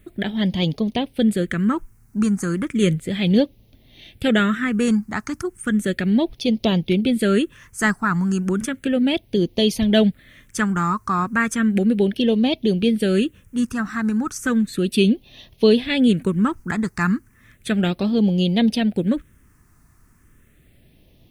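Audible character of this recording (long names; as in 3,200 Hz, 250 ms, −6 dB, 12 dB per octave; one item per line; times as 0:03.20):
a quantiser's noise floor 12 bits, dither triangular
phaser sweep stages 4, 0.34 Hz, lowest notch 550–1,400 Hz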